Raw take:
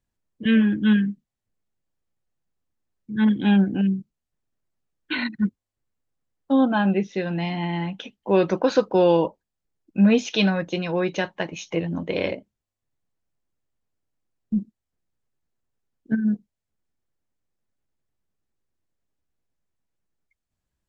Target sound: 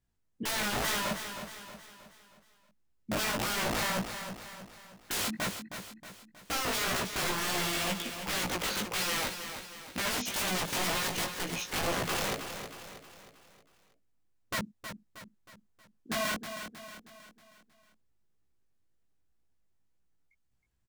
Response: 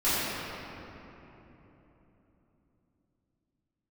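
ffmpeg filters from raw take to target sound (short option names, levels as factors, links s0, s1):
-filter_complex "[0:a]equalizer=f=80:t=o:w=1:g=4.5,bandreject=f=590:w=12,alimiter=limit=0.188:level=0:latency=1:release=173,aeval=exprs='(mod(21.1*val(0)+1,2)-1)/21.1':c=same,flanger=delay=16:depth=4.1:speed=2,asplit=2[s0][s1];[s1]aecho=0:1:316|632|948|1264|1580:0.355|0.167|0.0784|0.0368|0.0173[s2];[s0][s2]amix=inputs=2:normalize=0,volume=1.33"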